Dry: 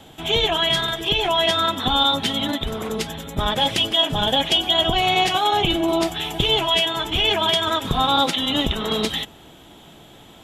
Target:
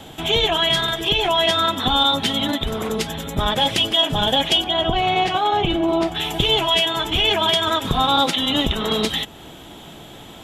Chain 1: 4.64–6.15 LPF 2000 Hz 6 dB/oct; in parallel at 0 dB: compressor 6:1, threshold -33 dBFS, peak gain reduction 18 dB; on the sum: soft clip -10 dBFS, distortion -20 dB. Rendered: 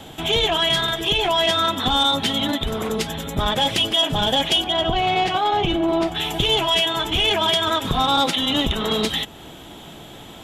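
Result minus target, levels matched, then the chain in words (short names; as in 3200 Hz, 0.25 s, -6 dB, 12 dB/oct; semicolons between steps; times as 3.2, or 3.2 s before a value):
soft clip: distortion +15 dB
4.64–6.15 LPF 2000 Hz 6 dB/oct; in parallel at 0 dB: compressor 6:1, threshold -33 dBFS, peak gain reduction 18 dB; on the sum: soft clip -1 dBFS, distortion -36 dB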